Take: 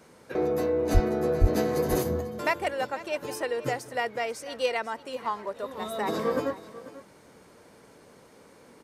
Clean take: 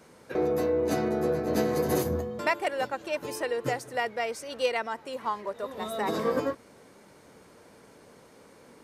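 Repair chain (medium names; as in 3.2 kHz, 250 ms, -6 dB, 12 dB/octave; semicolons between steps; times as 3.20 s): 0.93–1.05 s: high-pass 140 Hz 24 dB/octave; 1.40–1.52 s: high-pass 140 Hz 24 dB/octave; inverse comb 492 ms -16.5 dB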